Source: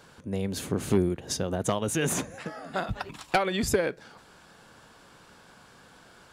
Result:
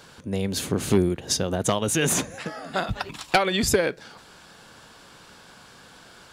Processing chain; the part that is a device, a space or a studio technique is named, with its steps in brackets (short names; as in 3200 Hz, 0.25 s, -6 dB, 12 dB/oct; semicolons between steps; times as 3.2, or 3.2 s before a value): presence and air boost (bell 4100 Hz +4.5 dB 1.7 oct; high shelf 9600 Hz +3.5 dB); gain +3.5 dB